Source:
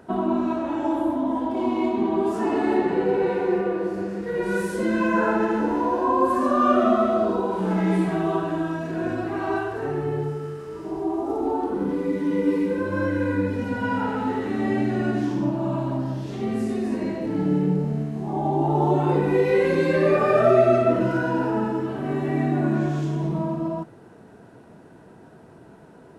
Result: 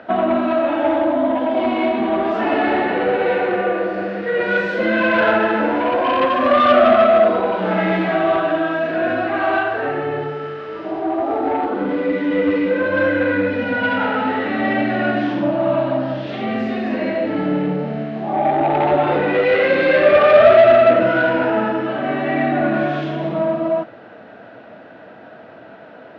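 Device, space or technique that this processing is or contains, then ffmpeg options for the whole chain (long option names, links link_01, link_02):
overdrive pedal into a guitar cabinet: -filter_complex "[0:a]asplit=2[link_01][link_02];[link_02]highpass=frequency=720:poles=1,volume=19dB,asoftclip=type=tanh:threshold=-6dB[link_03];[link_01][link_03]amix=inputs=2:normalize=0,lowpass=frequency=6400:poles=1,volume=-6dB,highpass=84,equalizer=frequency=160:width_type=q:width=4:gain=-7,equalizer=frequency=390:width_type=q:width=4:gain=-10,equalizer=frequency=600:width_type=q:width=4:gain=6,equalizer=frequency=970:width_type=q:width=4:gain=-9,lowpass=frequency=3600:width=0.5412,lowpass=frequency=3600:width=1.3066,volume=1.5dB"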